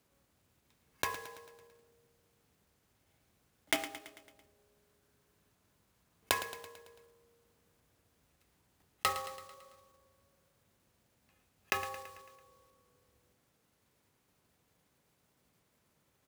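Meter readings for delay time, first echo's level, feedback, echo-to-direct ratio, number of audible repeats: 111 ms, −13.0 dB, 57%, −11.5 dB, 5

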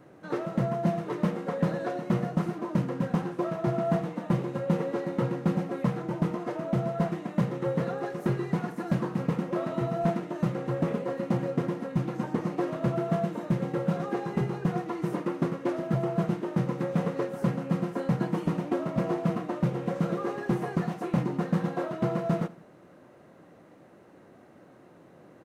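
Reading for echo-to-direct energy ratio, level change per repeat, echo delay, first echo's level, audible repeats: −19.0 dB, −6.0 dB, 82 ms, −20.0 dB, 2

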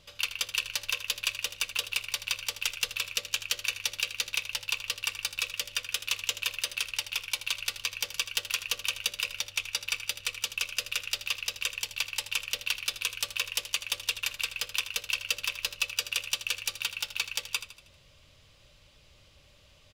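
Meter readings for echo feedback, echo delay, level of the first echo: 47%, 79 ms, −12.5 dB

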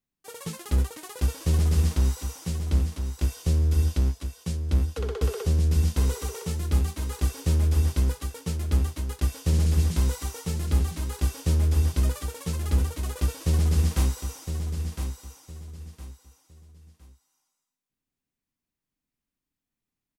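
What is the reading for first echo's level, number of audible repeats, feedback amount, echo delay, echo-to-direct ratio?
−8.0 dB, 3, 28%, 1,011 ms, −7.5 dB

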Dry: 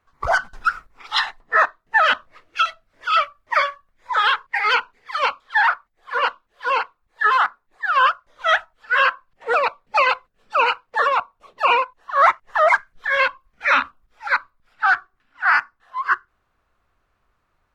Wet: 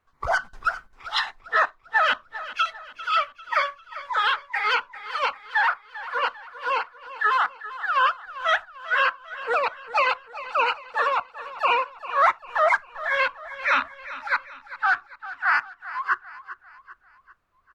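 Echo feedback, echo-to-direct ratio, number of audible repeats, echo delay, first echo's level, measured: 44%, −14.0 dB, 3, 396 ms, −15.0 dB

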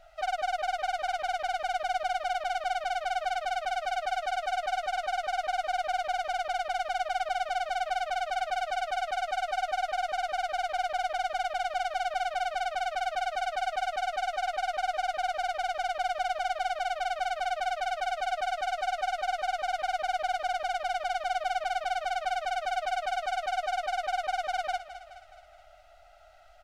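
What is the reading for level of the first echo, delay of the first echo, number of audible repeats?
−13.0 dB, 211 ms, 4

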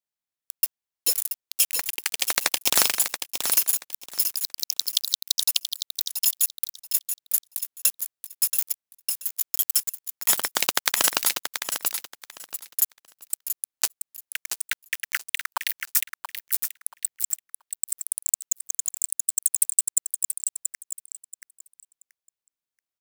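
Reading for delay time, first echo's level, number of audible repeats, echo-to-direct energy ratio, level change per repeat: 680 ms, −7.5 dB, 3, −7.5 dB, −13.5 dB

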